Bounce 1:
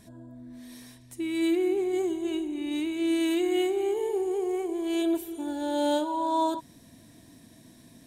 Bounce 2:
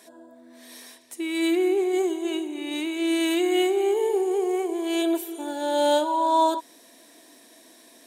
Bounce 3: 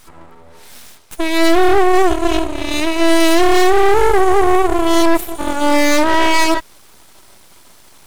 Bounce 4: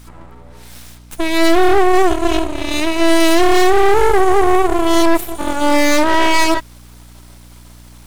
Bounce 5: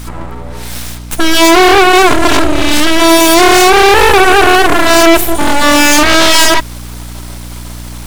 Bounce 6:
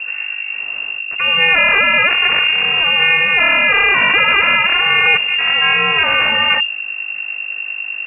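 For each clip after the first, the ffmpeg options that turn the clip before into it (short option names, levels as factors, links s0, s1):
-af "highpass=f=360:w=0.5412,highpass=f=360:w=1.3066,volume=2.11"
-af "aeval=exprs='0.316*(cos(1*acos(clip(val(0)/0.316,-1,1)))-cos(1*PI/2))+0.0501*(cos(5*acos(clip(val(0)/0.316,-1,1)))-cos(5*PI/2))+0.141*(cos(8*acos(clip(val(0)/0.316,-1,1)))-cos(8*PI/2))':c=same,equalizer=f=490:t=o:w=1.6:g=4,aeval=exprs='abs(val(0))':c=same,volume=1.33"
-af "aeval=exprs='val(0)+0.01*(sin(2*PI*60*n/s)+sin(2*PI*2*60*n/s)/2+sin(2*PI*3*60*n/s)/3+sin(2*PI*4*60*n/s)/4+sin(2*PI*5*60*n/s)/5)':c=same"
-af "aeval=exprs='0.891*sin(PI/2*3.55*val(0)/0.891)':c=same"
-af "aeval=exprs='val(0)+0.141*(sin(2*PI*50*n/s)+sin(2*PI*2*50*n/s)/2+sin(2*PI*3*50*n/s)/3+sin(2*PI*4*50*n/s)/4+sin(2*PI*5*50*n/s)/5)':c=same,lowpass=f=2400:t=q:w=0.5098,lowpass=f=2400:t=q:w=0.6013,lowpass=f=2400:t=q:w=0.9,lowpass=f=2400:t=q:w=2.563,afreqshift=-2800,volume=0.447"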